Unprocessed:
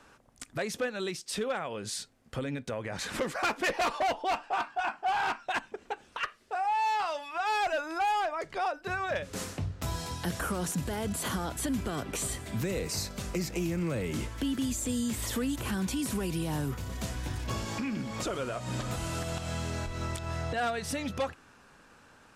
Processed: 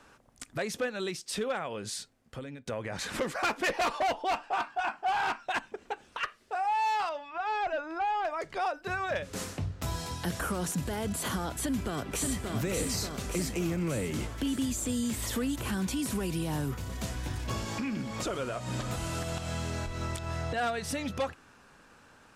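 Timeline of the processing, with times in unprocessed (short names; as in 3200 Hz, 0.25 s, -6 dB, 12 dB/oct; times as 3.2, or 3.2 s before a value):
1.8–2.66 fade out, to -11.5 dB
7.09–8.25 tape spacing loss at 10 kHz 22 dB
11.53–12.51 echo throw 0.58 s, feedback 65%, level -3.5 dB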